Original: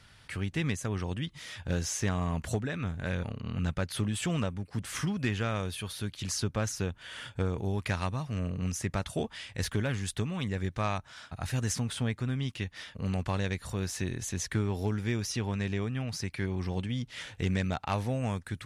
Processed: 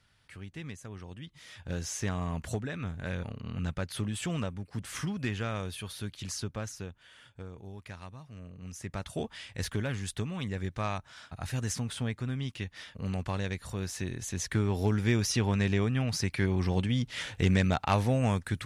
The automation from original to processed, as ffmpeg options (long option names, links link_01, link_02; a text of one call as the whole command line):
ffmpeg -i in.wav -af "volume=15.5dB,afade=type=in:start_time=1.16:duration=0.85:silence=0.375837,afade=type=out:start_time=6.08:duration=1.1:silence=0.281838,afade=type=in:start_time=8.6:duration=0.64:silence=0.266073,afade=type=in:start_time=14.22:duration=0.88:silence=0.473151" out.wav